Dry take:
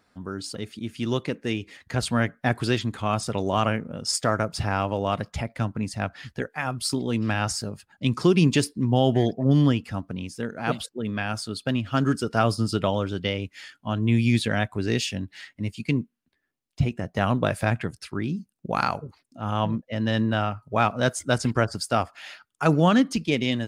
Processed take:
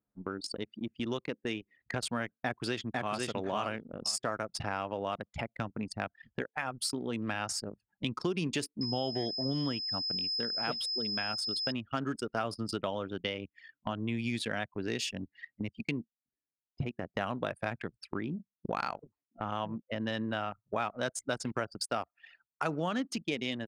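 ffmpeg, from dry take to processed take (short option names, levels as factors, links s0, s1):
-filter_complex "[0:a]asplit=2[s0][s1];[s1]afade=t=in:st=2.32:d=0.01,afade=t=out:st=3.16:d=0.01,aecho=0:1:500|1000|1500:0.707946|0.106192|0.0159288[s2];[s0][s2]amix=inputs=2:normalize=0,asettb=1/sr,asplit=3[s3][s4][s5];[s3]atrim=end=8.814[s6];[s4]atrim=start=8.81:end=11.72,asetpts=PTS-STARTPTS,afade=t=in:d=0.004:c=qsin,afade=t=out:st=2.906:d=0.004:c=qsin,aeval=exprs='val(0)+0.0398*sin(2*PI*5100*n/s)':c=same[s7];[s5]atrim=start=11.716[s8];[s6][s7]acrossfade=d=0.004:c1=hsin:c2=qsin[s9];[s9][s8]acrossfade=d=0.004:c1=qsin:c2=hsin,highpass=f=310:p=1,anlmdn=10,acompressor=threshold=0.00708:ratio=3,volume=2.24"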